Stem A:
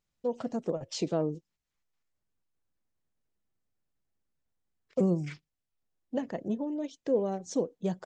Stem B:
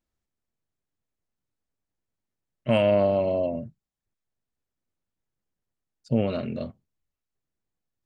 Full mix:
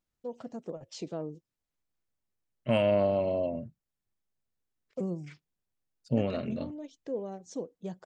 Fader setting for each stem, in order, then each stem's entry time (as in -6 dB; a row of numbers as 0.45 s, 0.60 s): -7.5 dB, -4.5 dB; 0.00 s, 0.00 s